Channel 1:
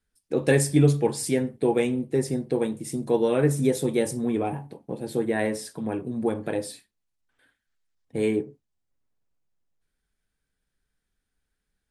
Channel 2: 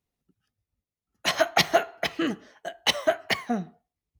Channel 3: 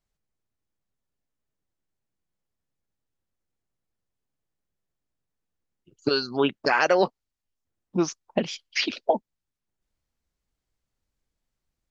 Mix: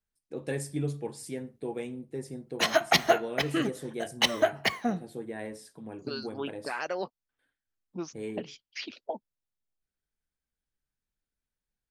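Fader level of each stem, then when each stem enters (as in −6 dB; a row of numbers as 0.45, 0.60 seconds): −13.0, −1.5, −13.0 decibels; 0.00, 1.35, 0.00 seconds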